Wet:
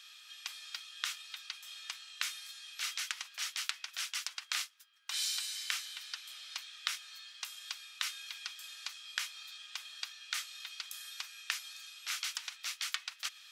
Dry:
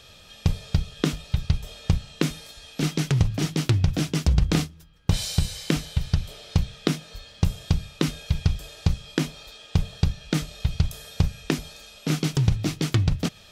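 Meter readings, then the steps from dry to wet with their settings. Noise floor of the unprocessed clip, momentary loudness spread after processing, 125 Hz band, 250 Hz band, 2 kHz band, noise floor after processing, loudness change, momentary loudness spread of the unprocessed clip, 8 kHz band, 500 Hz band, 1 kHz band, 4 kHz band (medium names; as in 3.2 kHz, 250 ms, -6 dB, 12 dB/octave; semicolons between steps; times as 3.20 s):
-49 dBFS, 8 LU, under -40 dB, under -40 dB, -4.0 dB, -57 dBFS, -13.0 dB, 7 LU, -3.5 dB, under -35 dB, -10.5 dB, -3.5 dB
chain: inverse Chebyshev high-pass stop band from 290 Hz, stop band 70 dB; trim -3.5 dB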